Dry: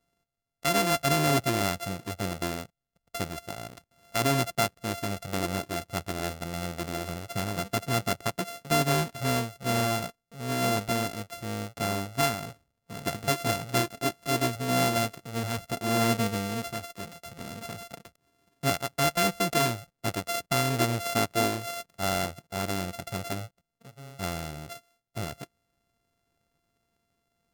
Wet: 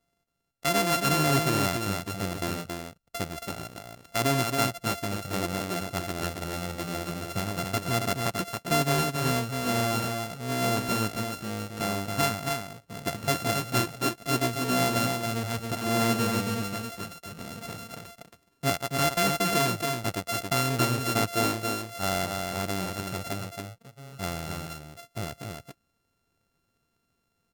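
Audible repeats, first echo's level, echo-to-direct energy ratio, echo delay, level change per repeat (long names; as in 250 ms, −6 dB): 1, −4.5 dB, −4.5 dB, 275 ms, repeats not evenly spaced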